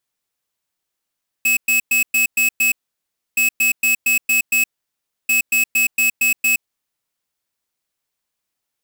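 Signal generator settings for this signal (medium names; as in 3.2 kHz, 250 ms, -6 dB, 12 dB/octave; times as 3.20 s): beep pattern square 2.58 kHz, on 0.12 s, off 0.11 s, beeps 6, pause 0.65 s, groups 3, -15.5 dBFS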